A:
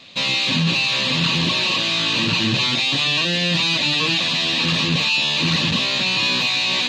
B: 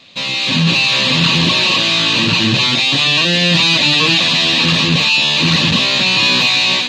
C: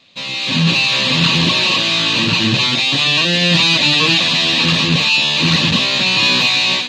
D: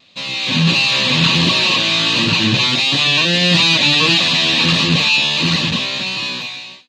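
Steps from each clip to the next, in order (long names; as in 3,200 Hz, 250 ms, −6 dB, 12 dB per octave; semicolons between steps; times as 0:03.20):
automatic gain control
expander for the loud parts 1.5 to 1, over −25 dBFS
fade-out on the ending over 1.79 s; pitch vibrato 1.5 Hz 26 cents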